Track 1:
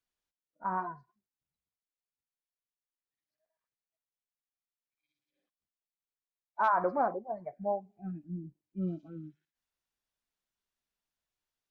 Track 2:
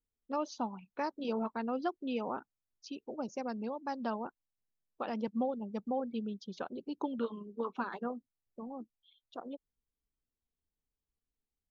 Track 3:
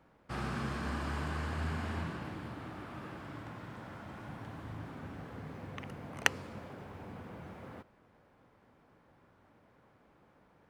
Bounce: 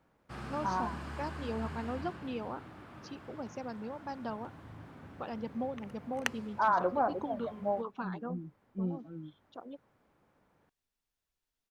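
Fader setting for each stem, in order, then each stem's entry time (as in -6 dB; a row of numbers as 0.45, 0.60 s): -0.5, -3.0, -5.5 dB; 0.00, 0.20, 0.00 s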